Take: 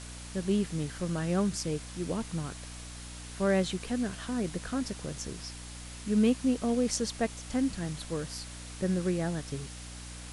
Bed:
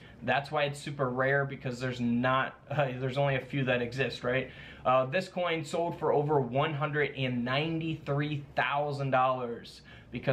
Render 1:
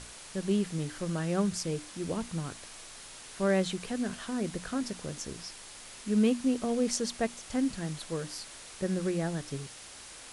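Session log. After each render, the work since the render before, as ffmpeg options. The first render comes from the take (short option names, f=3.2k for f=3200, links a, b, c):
-af "bandreject=f=60:t=h:w=6,bandreject=f=120:t=h:w=6,bandreject=f=180:t=h:w=6,bandreject=f=240:t=h:w=6,bandreject=f=300:t=h:w=6"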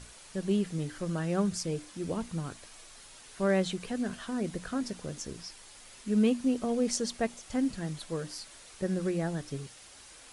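-af "afftdn=nr=6:nf=-48"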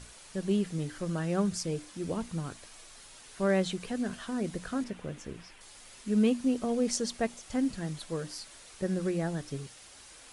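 -filter_complex "[0:a]asettb=1/sr,asplit=3[a][b][c];[a]atrim=end=4.844[d];[b]atrim=start=4.84:end=5.61,asetpts=PTS-STARTPTS,afade=t=in:d=0.004:c=qsin,afade=t=out:st=0.766:d=0.004:c=qsin,highshelf=f=3.6k:t=q:w=1.5:g=-8.5[e];[c]atrim=start=5.606[f];[d][e]acrossfade=d=0.004:c1=hsin:c2=qsin[g];[g][f]acrossfade=d=0.004:c1=qsin:c2=hsin"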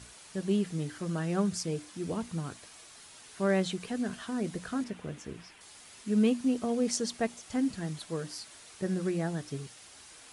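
-af "highpass=65,bandreject=f=540:w=12"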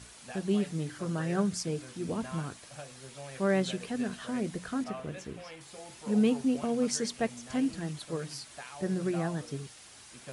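-filter_complex "[1:a]volume=-17dB[a];[0:a][a]amix=inputs=2:normalize=0"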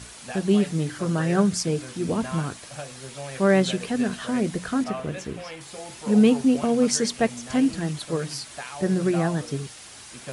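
-af "volume=8.5dB"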